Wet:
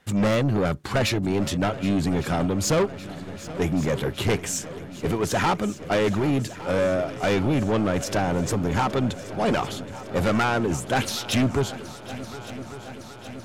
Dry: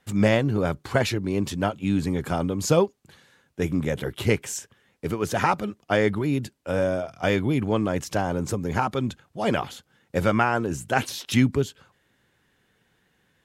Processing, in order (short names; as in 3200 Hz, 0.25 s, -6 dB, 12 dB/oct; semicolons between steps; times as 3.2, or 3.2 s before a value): high shelf 11000 Hz -5 dB; soft clip -23 dBFS, distortion -8 dB; multi-head echo 0.386 s, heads second and third, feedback 71%, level -17 dB; gain +5.5 dB